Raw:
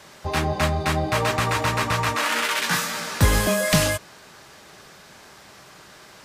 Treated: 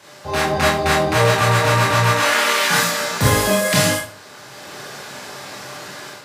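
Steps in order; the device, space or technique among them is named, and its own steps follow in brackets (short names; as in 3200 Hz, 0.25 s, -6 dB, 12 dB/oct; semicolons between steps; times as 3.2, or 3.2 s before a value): far laptop microphone (reverb RT60 0.40 s, pre-delay 21 ms, DRR -4.5 dB; HPF 110 Hz 12 dB/oct; AGC gain up to 9 dB); gain -1.5 dB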